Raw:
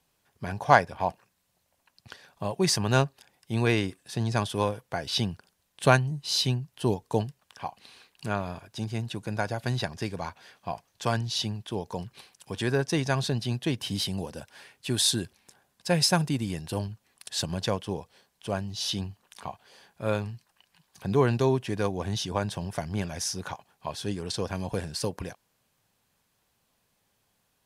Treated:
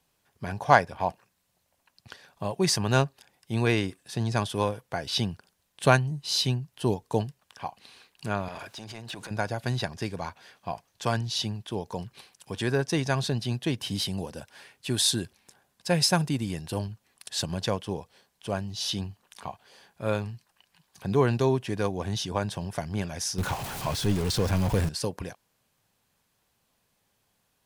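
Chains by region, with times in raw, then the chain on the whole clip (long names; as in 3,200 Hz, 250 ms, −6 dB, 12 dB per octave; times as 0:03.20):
0:08.48–0:09.31: downward compressor 10 to 1, threshold −36 dBFS + transient designer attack −8 dB, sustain +6 dB + mid-hump overdrive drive 16 dB, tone 5,400 Hz, clips at −27.5 dBFS
0:23.38–0:24.89: converter with a step at zero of −31 dBFS + low-shelf EQ 140 Hz +10.5 dB
whole clip: no processing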